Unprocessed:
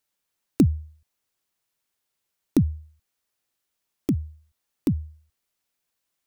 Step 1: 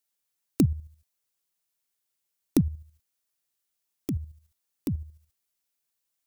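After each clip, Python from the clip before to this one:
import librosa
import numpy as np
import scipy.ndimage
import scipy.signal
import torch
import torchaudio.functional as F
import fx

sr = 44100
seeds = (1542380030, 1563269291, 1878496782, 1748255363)

y = fx.high_shelf(x, sr, hz=4400.0, db=8.5)
y = fx.level_steps(y, sr, step_db=9)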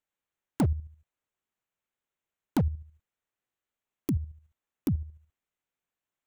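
y = fx.wiener(x, sr, points=9)
y = np.clip(y, -10.0 ** (-22.5 / 20.0), 10.0 ** (-22.5 / 20.0))
y = F.gain(torch.from_numpy(y), 2.0).numpy()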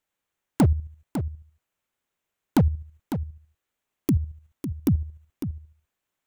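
y = x + 10.0 ** (-9.5 / 20.0) * np.pad(x, (int(552 * sr / 1000.0), 0))[:len(x)]
y = F.gain(torch.from_numpy(y), 6.5).numpy()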